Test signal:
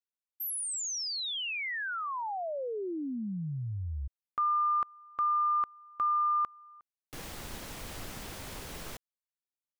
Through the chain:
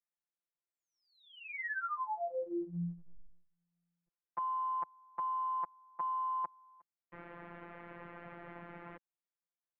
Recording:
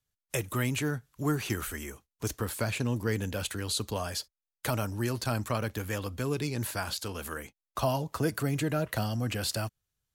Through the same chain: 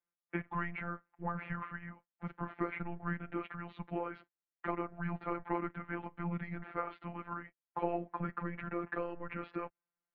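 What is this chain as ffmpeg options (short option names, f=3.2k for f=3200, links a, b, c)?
-af "highpass=f=330:t=q:w=0.5412,highpass=f=330:t=q:w=1.307,lowpass=f=2.3k:t=q:w=0.5176,lowpass=f=2.3k:t=q:w=0.7071,lowpass=f=2.3k:t=q:w=1.932,afreqshift=-220,acontrast=65,afftfilt=real='hypot(re,im)*cos(PI*b)':imag='0':win_size=1024:overlap=0.75,volume=-5dB"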